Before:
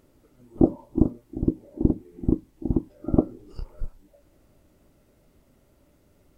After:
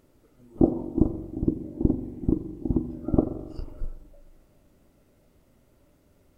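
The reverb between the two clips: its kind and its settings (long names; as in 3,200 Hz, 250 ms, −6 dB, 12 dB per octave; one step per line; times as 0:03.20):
spring reverb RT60 1.4 s, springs 41/45 ms, chirp 75 ms, DRR 8.5 dB
level −1.5 dB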